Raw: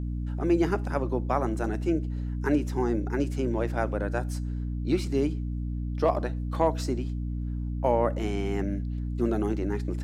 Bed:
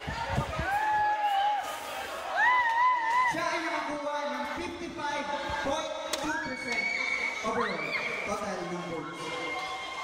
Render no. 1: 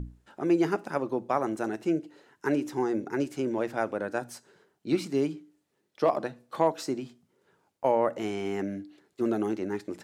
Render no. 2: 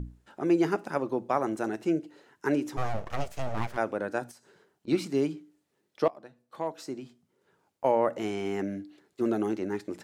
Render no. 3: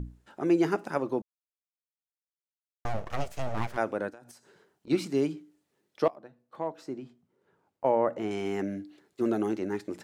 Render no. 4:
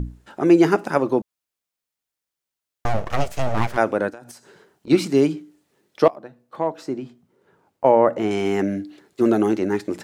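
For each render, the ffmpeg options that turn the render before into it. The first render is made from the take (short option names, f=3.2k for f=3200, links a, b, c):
-af "bandreject=f=60:t=h:w=6,bandreject=f=120:t=h:w=6,bandreject=f=180:t=h:w=6,bandreject=f=240:t=h:w=6,bandreject=f=300:t=h:w=6"
-filter_complex "[0:a]asplit=3[a][b][c];[a]afade=t=out:st=2.76:d=0.02[d];[b]aeval=exprs='abs(val(0))':c=same,afade=t=in:st=2.76:d=0.02,afade=t=out:st=3.76:d=0.02[e];[c]afade=t=in:st=3.76:d=0.02[f];[d][e][f]amix=inputs=3:normalize=0,asettb=1/sr,asplit=3[g][h][i];[g]atrim=end=4.314[j];[h]atrim=start=4.31:end=4.88,asetpts=PTS-STARTPTS,afade=t=in:d=0.004:c=qsin,afade=t=out:st=0.566:d=0.004:c=qsin,acompressor=threshold=-52dB:ratio=5:attack=3.2:release=140:knee=1:detection=peak[k];[i]atrim=start=4.876[l];[j][k]acrossfade=d=0.004:c1=hsin:c2=qsin[m];[m][l]acrossfade=d=0.004:c1=qsin:c2=hsin,asplit=2[n][o];[n]atrim=end=6.08,asetpts=PTS-STARTPTS,afade=t=out:st=6.076:d=0.004:c=hsin:silence=0.0794328[p];[o]atrim=start=6.08,asetpts=PTS-STARTPTS,afade=t=in:d=1.8:silence=0.0794328[q];[p][q]concat=n=2:v=0:a=1"
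-filter_complex "[0:a]asplit=3[a][b][c];[a]afade=t=out:st=4.09:d=0.02[d];[b]acompressor=threshold=-44dB:ratio=12:attack=3.2:release=140:knee=1:detection=peak,afade=t=in:st=4.09:d=0.02,afade=t=out:st=4.89:d=0.02[e];[c]afade=t=in:st=4.89:d=0.02[f];[d][e][f]amix=inputs=3:normalize=0,asettb=1/sr,asplit=3[g][h][i];[g]atrim=end=6.154[j];[h]atrim=start=6.15:end=8.31,asetpts=PTS-STARTPTS,afade=t=in:d=0.004:c=qsin,afade=t=out:st=2.156:d=0.004:c=qsin,highshelf=f=3k:g=-11.5[k];[i]atrim=start=8.306[l];[j][k]acrossfade=d=0.004:c1=hsin:c2=qsin[m];[m][l]acrossfade=d=0.004:c1=qsin:c2=hsin,asplit=3[n][o][p];[n]atrim=end=1.22,asetpts=PTS-STARTPTS,afade=t=out:st=1.216:d=0.004:c=hsin[q];[o]atrim=start=1.22:end=2.85,asetpts=PTS-STARTPTS,volume=0[r];[p]atrim=start=2.85,asetpts=PTS-STARTPTS,afade=t=in:d=0.004:c=hsin[s];[q][r][s]concat=n=3:v=0:a=1"
-af "volume=10dB"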